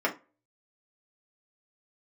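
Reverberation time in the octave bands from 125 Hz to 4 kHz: 0.35 s, 0.30 s, 0.30 s, 0.30 s, 0.25 s, 0.20 s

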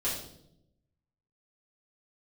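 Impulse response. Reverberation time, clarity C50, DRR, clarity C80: 0.75 s, 3.5 dB, -10.5 dB, 7.0 dB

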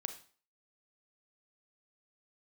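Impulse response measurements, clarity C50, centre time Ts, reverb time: 10.5 dB, 10 ms, 0.45 s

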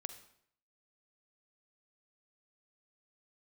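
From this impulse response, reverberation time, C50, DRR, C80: 0.65 s, 10.5 dB, 9.5 dB, 13.5 dB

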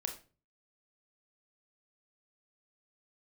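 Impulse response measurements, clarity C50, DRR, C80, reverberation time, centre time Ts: 10.0 dB, 4.0 dB, 15.5 dB, 0.35 s, 15 ms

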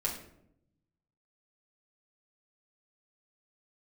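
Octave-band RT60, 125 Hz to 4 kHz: 1.5 s, 1.2 s, 0.85 s, 0.65 s, 0.55 s, 0.45 s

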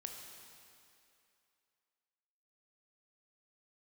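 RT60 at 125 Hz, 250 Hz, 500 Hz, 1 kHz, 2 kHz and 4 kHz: 2.1 s, 2.4 s, 2.6 s, 2.7 s, 2.6 s, 2.4 s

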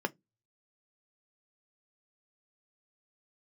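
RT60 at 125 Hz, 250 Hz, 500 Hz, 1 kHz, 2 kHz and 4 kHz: 0.30 s, 0.30 s, 0.20 s, 0.15 s, 0.15 s, 0.10 s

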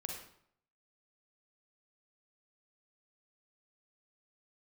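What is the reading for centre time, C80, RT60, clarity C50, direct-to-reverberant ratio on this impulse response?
40 ms, 6.0 dB, 0.65 s, 2.5 dB, 1.0 dB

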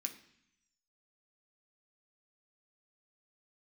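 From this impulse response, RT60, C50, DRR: 0.70 s, 11.5 dB, 2.5 dB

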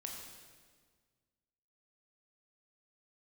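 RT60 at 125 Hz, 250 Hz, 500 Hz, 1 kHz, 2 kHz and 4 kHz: 2.1 s, 1.9 s, 1.7 s, 1.6 s, 1.5 s, 1.4 s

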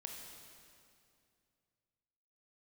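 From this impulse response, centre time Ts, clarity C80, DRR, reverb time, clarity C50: 85 ms, 3.5 dB, 1.0 dB, 2.4 s, 2.0 dB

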